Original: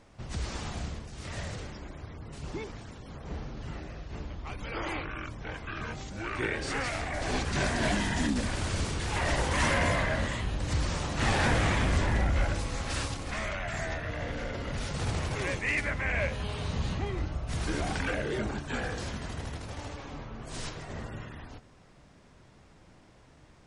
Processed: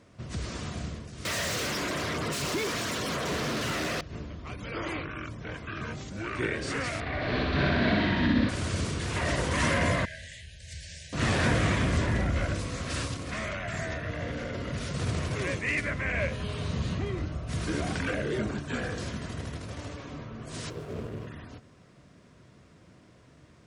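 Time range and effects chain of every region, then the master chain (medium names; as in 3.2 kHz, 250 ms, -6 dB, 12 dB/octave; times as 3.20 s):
1.25–4.01 s: treble shelf 4.8 kHz +7.5 dB + overdrive pedal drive 35 dB, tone 6.6 kHz, clips at -24.5 dBFS
7.00–8.49 s: Chebyshev low-pass 4.2 kHz, order 4 + flutter echo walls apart 10.6 m, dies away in 1.4 s
10.05–11.13 s: brick-wall FIR band-stop 710–1500 Hz + amplifier tone stack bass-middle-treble 10-0-10 + feedback comb 81 Hz, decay 0.18 s, mix 70%
20.70–21.27 s: peaking EQ 430 Hz +9.5 dB 0.45 oct + sliding maximum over 17 samples
whole clip: high-pass 88 Hz 12 dB/octave; bass shelf 360 Hz +4.5 dB; band-stop 830 Hz, Q 5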